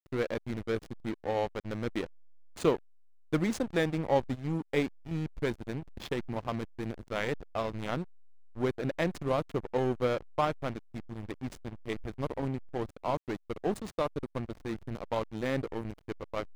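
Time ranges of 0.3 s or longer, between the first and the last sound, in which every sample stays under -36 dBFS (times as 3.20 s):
2.05–2.57 s
2.77–3.33 s
8.03–8.58 s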